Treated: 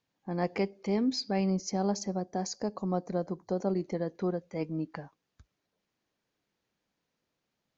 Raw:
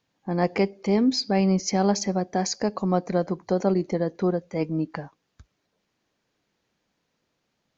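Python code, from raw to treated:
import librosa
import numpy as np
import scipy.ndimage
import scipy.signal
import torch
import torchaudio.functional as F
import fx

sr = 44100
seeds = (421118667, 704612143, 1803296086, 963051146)

y = fx.peak_eq(x, sr, hz=2400.0, db=-9.0, octaves=1.3, at=(1.5, 3.74))
y = F.gain(torch.from_numpy(y), -7.5).numpy()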